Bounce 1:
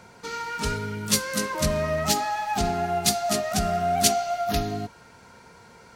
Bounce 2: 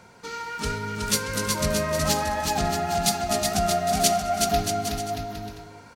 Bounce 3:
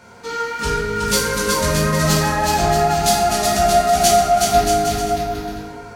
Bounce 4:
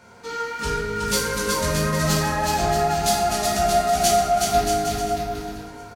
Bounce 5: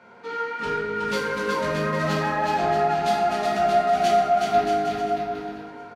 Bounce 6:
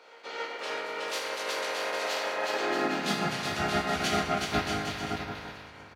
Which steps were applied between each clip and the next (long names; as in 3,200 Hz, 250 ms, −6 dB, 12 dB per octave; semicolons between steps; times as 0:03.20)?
bouncing-ball delay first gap 370 ms, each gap 0.7×, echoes 5; level −1.5 dB
in parallel at −10 dB: soft clipping −24 dBFS, distortion −10 dB; on the sum: dense smooth reverb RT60 1.2 s, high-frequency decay 0.5×, DRR −5 dB
repeating echo 684 ms, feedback 40%, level −21.5 dB; level −4.5 dB
three-way crossover with the lows and the highs turned down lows −19 dB, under 160 Hz, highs −21 dB, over 3,500 Hz
ceiling on every frequency bin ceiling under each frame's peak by 24 dB; echo ahead of the sound 272 ms −19 dB; high-pass filter sweep 510 Hz → 73 Hz, 0:02.50–0:03.71; level −9 dB